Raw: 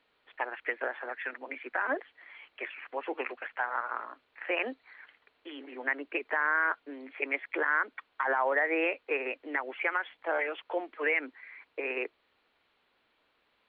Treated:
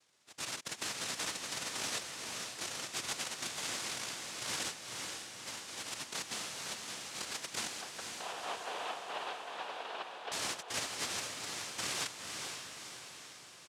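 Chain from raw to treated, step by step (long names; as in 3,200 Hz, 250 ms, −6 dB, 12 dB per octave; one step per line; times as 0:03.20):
adaptive Wiener filter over 9 samples
treble cut that deepens with the level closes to 1,600 Hz, closed at −29.5 dBFS
spectral tilt +4 dB per octave
comb filter 2.6 ms, depth 87%
compressor whose output falls as the input rises −31 dBFS, ratio −0.5
brickwall limiter −24.5 dBFS, peak gain reduction 8 dB
cochlear-implant simulation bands 1
0:07.81–0:10.32: loudspeaker in its box 430–3,100 Hz, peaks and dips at 440 Hz +5 dB, 720 Hz +9 dB, 1,000 Hz +4 dB, 2,100 Hz −9 dB
feedback delay with all-pass diffusion 494 ms, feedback 56%, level −4.5 dB
level −4.5 dB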